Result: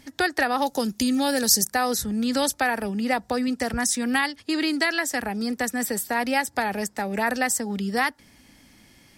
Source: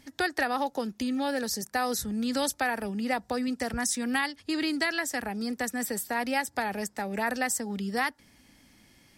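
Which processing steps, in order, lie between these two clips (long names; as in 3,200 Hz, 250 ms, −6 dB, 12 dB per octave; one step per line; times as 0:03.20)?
0:00.62–0:01.74: bass and treble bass +4 dB, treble +11 dB
0:04.43–0:05.12: high-pass filter 180 Hz 12 dB per octave
level +5 dB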